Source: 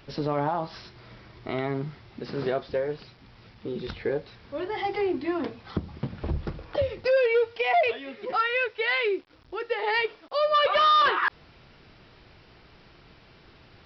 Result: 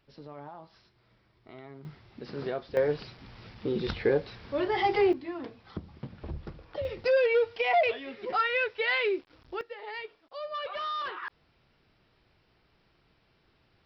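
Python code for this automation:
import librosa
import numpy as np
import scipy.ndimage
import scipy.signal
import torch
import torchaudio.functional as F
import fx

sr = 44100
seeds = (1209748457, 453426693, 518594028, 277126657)

y = fx.gain(x, sr, db=fx.steps((0.0, -18.0), (1.85, -6.0), (2.77, 3.0), (5.13, -9.0), (6.85, -2.0), (9.61, -14.0)))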